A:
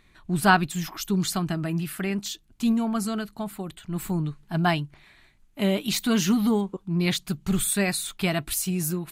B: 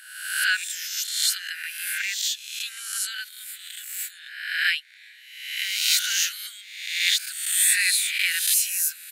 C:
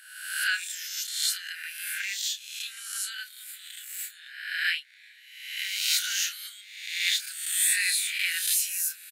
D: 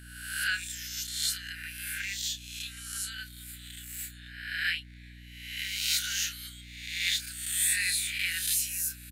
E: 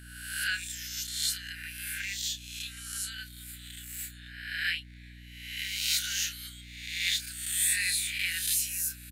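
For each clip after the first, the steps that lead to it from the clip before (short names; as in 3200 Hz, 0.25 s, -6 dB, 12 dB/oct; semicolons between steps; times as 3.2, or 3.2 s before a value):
spectral swells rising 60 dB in 0.99 s; AGC gain up to 5 dB; steep high-pass 1500 Hz 96 dB/oct
doubler 30 ms -8.5 dB; gain -5 dB
hum 60 Hz, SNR 15 dB; gain -3 dB
dynamic EQ 1200 Hz, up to -5 dB, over -52 dBFS, Q 2.7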